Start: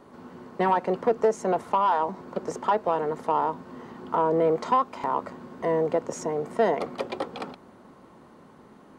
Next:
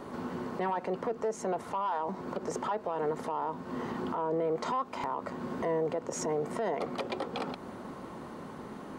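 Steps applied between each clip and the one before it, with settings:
downward compressor 2 to 1, threshold −41 dBFS, peak gain reduction 13 dB
brickwall limiter −31.5 dBFS, peak gain reduction 10.5 dB
level +8 dB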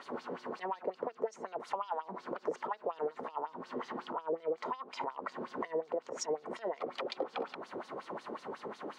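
downward compressor, threshold −37 dBFS, peak gain reduction 9.5 dB
auto-filter band-pass sine 5.5 Hz 400–5,300 Hz
level +10 dB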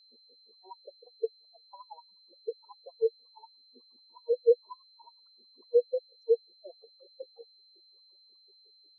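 steady tone 4,100 Hz −41 dBFS
every bin expanded away from the loudest bin 4 to 1
level +8 dB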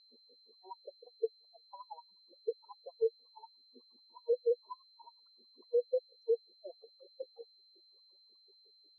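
brickwall limiter −22.5 dBFS, peak gain reduction 9.5 dB
high-frequency loss of the air 120 metres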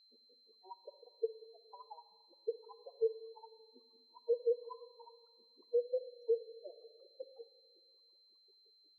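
convolution reverb RT60 1.7 s, pre-delay 7 ms, DRR 12 dB
level −3 dB

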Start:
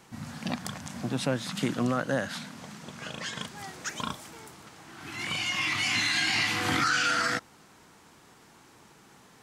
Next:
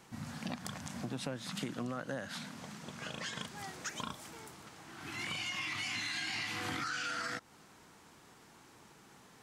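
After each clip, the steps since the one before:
downward compressor 4 to 1, threshold −33 dBFS, peak gain reduction 9.5 dB
level −3.5 dB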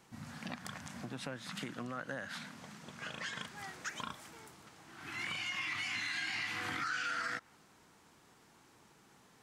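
dynamic equaliser 1,700 Hz, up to +7 dB, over −54 dBFS, Q 0.92
level −4.5 dB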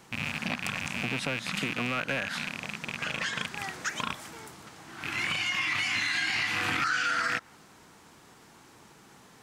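loose part that buzzes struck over −52 dBFS, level −29 dBFS
level +9 dB

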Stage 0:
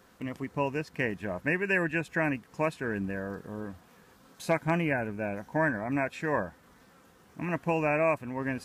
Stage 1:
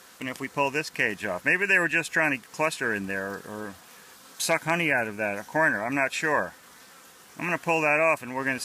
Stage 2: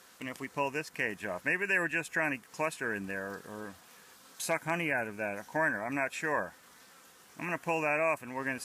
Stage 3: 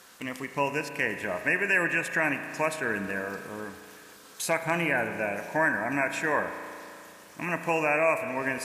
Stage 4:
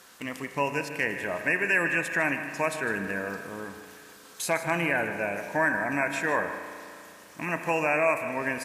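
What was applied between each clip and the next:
Bessel low-pass filter 11,000 Hz, order 2; spectral tilt +3.5 dB per octave; in parallel at +2 dB: brickwall limiter −21.5 dBFS, peak gain reduction 9 dB
dynamic equaliser 4,100 Hz, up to −6 dB, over −41 dBFS, Q 1.2; level −6.5 dB
spring reverb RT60 2.7 s, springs 35 ms, chirp 20 ms, DRR 8 dB; level +4.5 dB
single-tap delay 154 ms −13 dB

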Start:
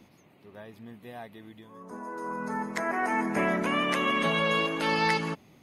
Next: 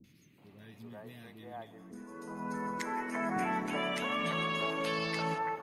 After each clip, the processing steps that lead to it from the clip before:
downward compressor 2.5 to 1, threshold −29 dBFS, peak gain reduction 6 dB
three-band delay without the direct sound lows, highs, mids 40/380 ms, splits 360/1,700 Hz
convolution reverb RT60 1.9 s, pre-delay 7 ms, DRR 15 dB
level −1.5 dB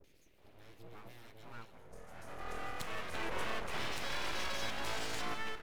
full-wave rectification
level −2 dB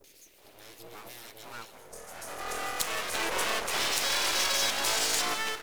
bass and treble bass −11 dB, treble +12 dB
level +8.5 dB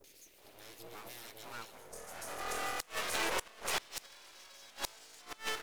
gate with flip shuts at −18 dBFS, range −25 dB
level −3 dB

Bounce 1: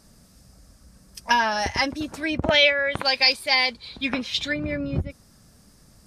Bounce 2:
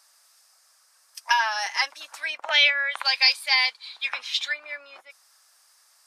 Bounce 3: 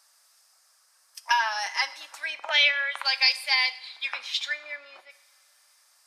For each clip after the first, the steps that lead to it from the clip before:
high-pass filter 880 Hz 24 dB per octave
convolution reverb, pre-delay 3 ms, DRR 12.5 dB; level −2.5 dB

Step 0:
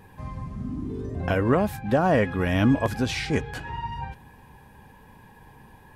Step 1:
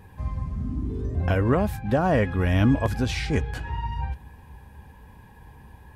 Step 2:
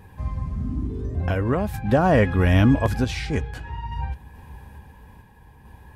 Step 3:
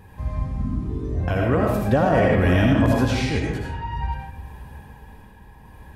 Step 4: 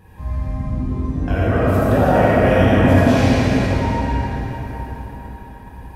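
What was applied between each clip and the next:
parametric band 63 Hz +13.5 dB 1.1 octaves; level −1.5 dB
sample-and-hold tremolo 2.3 Hz; level +4.5 dB
convolution reverb RT60 0.90 s, pre-delay 40 ms, DRR −1.5 dB; brickwall limiter −9 dBFS, peak gain reduction 6 dB
dense smooth reverb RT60 4.6 s, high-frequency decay 0.65×, DRR −6.5 dB; level −2.5 dB

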